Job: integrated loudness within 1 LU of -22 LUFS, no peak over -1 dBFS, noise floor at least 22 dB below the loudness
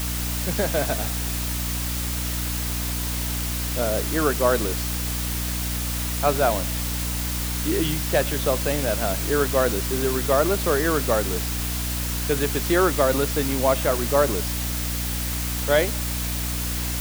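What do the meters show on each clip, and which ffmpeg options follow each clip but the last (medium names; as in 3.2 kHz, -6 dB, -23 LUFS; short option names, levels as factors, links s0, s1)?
hum 60 Hz; highest harmonic 300 Hz; hum level -26 dBFS; noise floor -27 dBFS; noise floor target -46 dBFS; loudness -23.5 LUFS; peak level -5.5 dBFS; loudness target -22.0 LUFS
-> -af "bandreject=f=60:t=h:w=4,bandreject=f=120:t=h:w=4,bandreject=f=180:t=h:w=4,bandreject=f=240:t=h:w=4,bandreject=f=300:t=h:w=4"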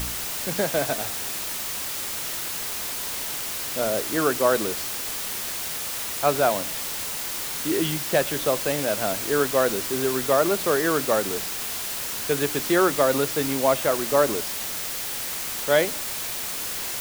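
hum not found; noise floor -31 dBFS; noise floor target -46 dBFS
-> -af "afftdn=nr=15:nf=-31"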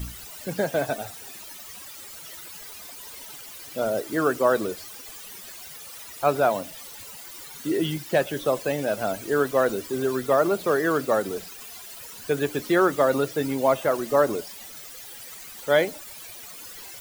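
noise floor -42 dBFS; noise floor target -47 dBFS
-> -af "afftdn=nr=6:nf=-42"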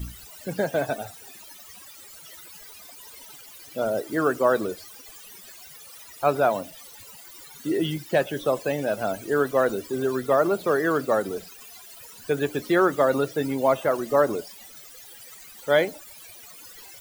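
noise floor -46 dBFS; noise floor target -47 dBFS
-> -af "afftdn=nr=6:nf=-46"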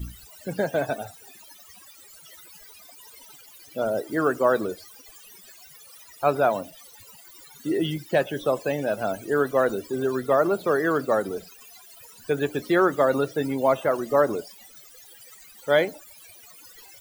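noise floor -49 dBFS; loudness -24.5 LUFS; peak level -7.5 dBFS; loudness target -22.0 LUFS
-> -af "volume=1.33"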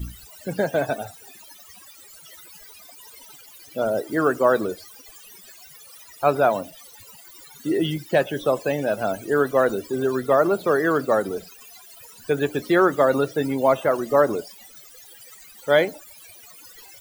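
loudness -22.0 LUFS; peak level -5.0 dBFS; noise floor -47 dBFS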